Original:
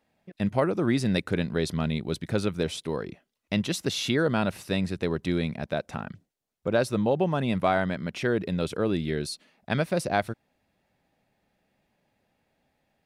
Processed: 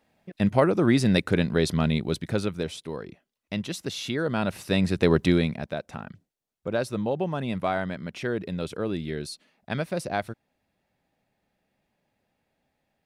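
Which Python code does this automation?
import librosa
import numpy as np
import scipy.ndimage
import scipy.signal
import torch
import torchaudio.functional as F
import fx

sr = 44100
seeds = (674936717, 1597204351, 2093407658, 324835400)

y = fx.gain(x, sr, db=fx.line((1.97, 4.0), (2.8, -4.0), (4.15, -4.0), (5.18, 9.0), (5.76, -3.0)))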